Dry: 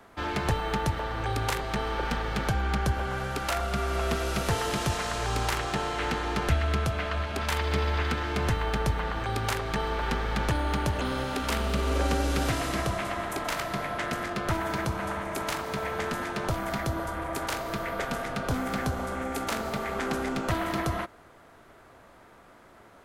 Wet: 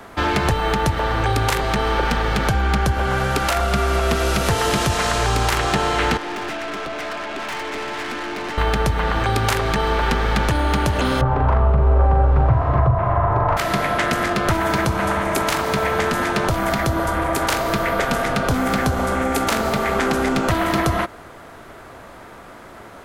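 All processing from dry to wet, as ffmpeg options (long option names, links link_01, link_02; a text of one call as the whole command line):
ffmpeg -i in.wav -filter_complex "[0:a]asettb=1/sr,asplit=3[link_01][link_02][link_03];[link_01]atrim=end=6.174[link_04];[link_02]atrim=start=6.17:end=8.58,asetpts=PTS-STARTPTS,afade=type=in:duration=0.004:curve=qsin,afade=type=out:start_time=2.406:duration=0.004:curve=qsin,highpass=frequency=270:width=0.5412,highpass=frequency=270:width=1.3066,equalizer=frequency=310:width_type=q:width=4:gain=4,equalizer=frequency=480:width_type=q:width=4:gain=-6,equalizer=frequency=1300:width_type=q:width=4:gain=-3,lowpass=frequency=3000:width=0.5412,lowpass=frequency=3000:width=1.3066,aeval=exprs='(tanh(89.1*val(0)+0.3)-tanh(0.3))/89.1':channel_layout=same[link_05];[link_03]atrim=start=8.576[link_06];[link_04][link_05]acrossfade=duration=0.004:curve1=hsin:curve2=qsin[link_07];[link_07][link_06]acrossfade=duration=0.004:curve1=qsin:curve2=hsin,asettb=1/sr,asplit=3[link_08][link_09][link_10];[link_08]atrim=end=11.214[link_11];[link_09]atrim=start=11.21:end=13.57,asetpts=PTS-STARTPTS,afade=type=in:duration=0.004:curve=qsin,afade=type=out:start_time=2.356:duration=0.004:curve=qsin,lowpass=frequency=1000:width_type=q:width=2.2,lowshelf=frequency=160:width_type=q:width=3:gain=9,asplit=2[link_12][link_13];[link_13]adelay=41,volume=-4dB[link_14];[link_12][link_14]amix=inputs=2:normalize=0,atrim=end_sample=104076[link_15];[link_10]atrim=start=13.566[link_16];[link_11][link_15]acrossfade=duration=0.004:curve1=hsin:curve2=qsin[link_17];[link_17][link_16]acrossfade=duration=0.004:curve1=qsin:curve2=hsin,acompressor=threshold=-30dB:ratio=2.5,alimiter=level_in=19.5dB:limit=-1dB:release=50:level=0:latency=1,volume=-6dB" out.wav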